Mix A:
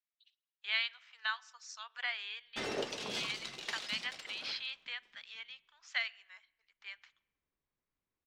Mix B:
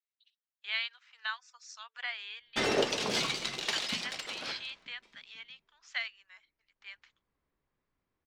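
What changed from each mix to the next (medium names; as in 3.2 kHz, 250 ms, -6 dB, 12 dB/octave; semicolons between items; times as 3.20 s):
background +9.0 dB; reverb: off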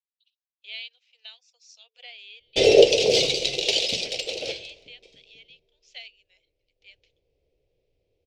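background +12.0 dB; master: add FFT filter 110 Hz 0 dB, 230 Hz -14 dB, 490 Hz +9 dB, 730 Hz -6 dB, 1.1 kHz -29 dB, 1.7 kHz -23 dB, 2.5 kHz -1 dB, 5.4 kHz -1 dB, 11 kHz -10 dB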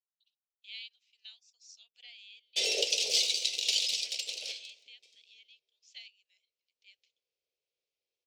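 master: add differentiator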